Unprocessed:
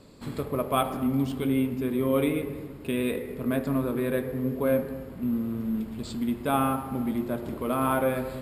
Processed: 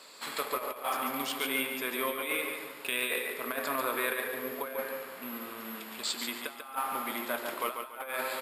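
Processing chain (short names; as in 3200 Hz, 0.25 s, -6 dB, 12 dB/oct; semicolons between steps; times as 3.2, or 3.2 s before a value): HPF 1100 Hz 12 dB/oct; negative-ratio compressor -40 dBFS, ratio -0.5; feedback echo 0.142 s, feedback 30%, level -7 dB; gain +6.5 dB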